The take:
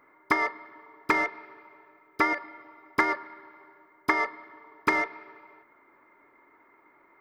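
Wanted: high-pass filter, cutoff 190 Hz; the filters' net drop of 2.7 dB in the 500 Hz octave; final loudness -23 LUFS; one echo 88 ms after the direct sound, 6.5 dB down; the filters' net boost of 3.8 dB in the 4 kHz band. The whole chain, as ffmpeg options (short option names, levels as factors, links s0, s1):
-af "highpass=190,equalizer=f=500:t=o:g=-3.5,equalizer=f=4000:t=o:g=5,aecho=1:1:88:0.473,volume=1.58"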